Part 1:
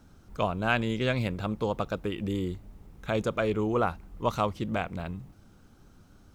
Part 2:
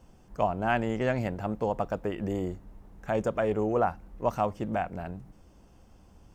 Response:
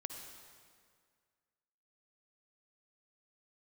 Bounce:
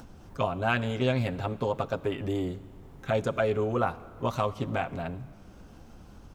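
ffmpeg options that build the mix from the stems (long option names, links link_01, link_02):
-filter_complex "[0:a]volume=-4dB,asplit=2[link_01][link_02];[link_02]volume=-7.5dB[link_03];[1:a]lowpass=5700,acompressor=threshold=-29dB:ratio=6,adelay=7.7,volume=1.5dB[link_04];[2:a]atrim=start_sample=2205[link_05];[link_03][link_05]afir=irnorm=-1:irlink=0[link_06];[link_01][link_04][link_06]amix=inputs=3:normalize=0,acompressor=mode=upward:threshold=-42dB:ratio=2.5"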